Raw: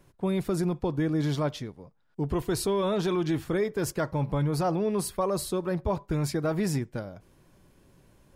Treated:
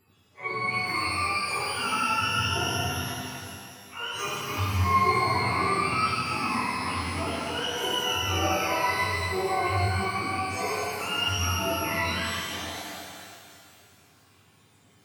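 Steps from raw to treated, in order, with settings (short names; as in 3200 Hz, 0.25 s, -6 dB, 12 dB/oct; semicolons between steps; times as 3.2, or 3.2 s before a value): spectrum mirrored in octaves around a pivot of 650 Hz; plain phase-vocoder stretch 1.8×; shimmer reverb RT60 2.4 s, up +12 st, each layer -8 dB, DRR -9.5 dB; gain -4.5 dB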